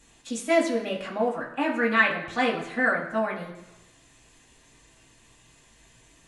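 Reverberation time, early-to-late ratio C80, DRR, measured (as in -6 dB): 1.0 s, 10.0 dB, -4.0 dB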